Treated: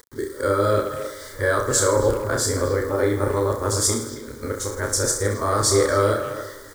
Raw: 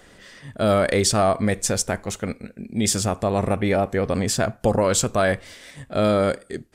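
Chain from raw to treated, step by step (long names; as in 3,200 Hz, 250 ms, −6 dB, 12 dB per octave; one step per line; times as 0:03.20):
played backwards from end to start
in parallel at −3 dB: downward compressor, threshold −30 dBFS, peak gain reduction 15 dB
on the sum: reverse bouncing-ball delay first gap 30 ms, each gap 1.2×, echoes 5
on a send at −21 dB: convolution reverb RT60 3.2 s, pre-delay 65 ms
on the sum: bit reduction 7 bits
phaser with its sweep stopped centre 710 Hz, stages 6
far-end echo of a speakerphone 270 ms, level −9 dB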